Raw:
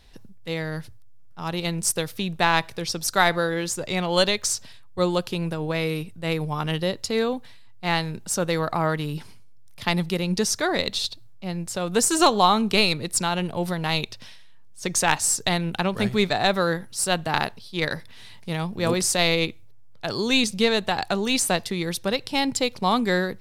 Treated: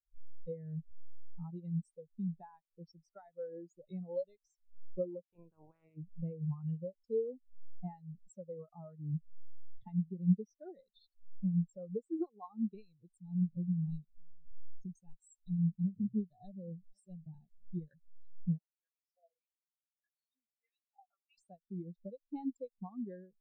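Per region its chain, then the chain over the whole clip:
0:05.22–0:05.96: ceiling on every frequency bin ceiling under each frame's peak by 25 dB + high-frequency loss of the air 330 metres
0:13.09–0:17.90: parametric band 1,200 Hz −13.5 dB 2.5 octaves + single-tap delay 473 ms −20 dB
0:18.58–0:21.38: downward compressor 2.5 to 1, threshold −35 dBFS + auto-filter band-pass saw up 1.7 Hz 540–6,100 Hz + chorus effect 1.7 Hz, delay 16 ms, depth 7.8 ms
whole clip: low-pass filter 9,900 Hz; downward compressor 12 to 1, threshold −35 dBFS; every bin expanded away from the loudest bin 4 to 1; level +2.5 dB

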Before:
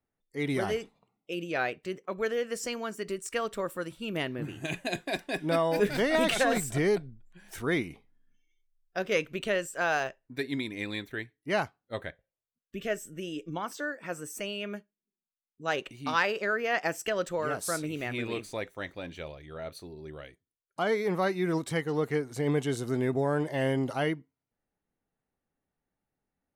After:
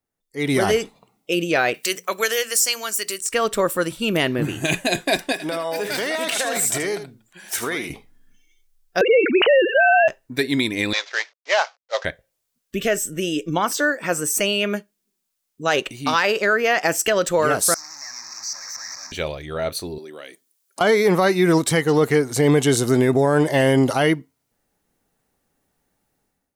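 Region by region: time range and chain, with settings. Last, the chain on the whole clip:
0:01.74–0:03.21: spectral tilt +4.5 dB per octave + mains-hum notches 60/120/180/240/300 Hz
0:05.32–0:07.90: high-pass filter 550 Hz 6 dB per octave + downward compressor 12 to 1, threshold −35 dBFS + single-tap delay 78 ms −10 dB
0:09.01–0:10.08: three sine waves on the formant tracks + envelope flattener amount 70%
0:10.93–0:12.05: variable-slope delta modulation 32 kbit/s + elliptic high-pass filter 530 Hz, stop band 80 dB
0:17.74–0:19.12: sign of each sample alone + pair of resonant band-passes 2,900 Hz, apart 1.9 octaves + phaser with its sweep stopped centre 2,200 Hz, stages 8
0:19.98–0:20.81: high-shelf EQ 4,500 Hz +7.5 dB + downward compressor 4 to 1, threshold −48 dBFS + high-pass filter 220 Hz 24 dB per octave
whole clip: bass and treble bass −2 dB, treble +6 dB; automatic gain control gain up to 14 dB; boost into a limiter +7.5 dB; level −7 dB

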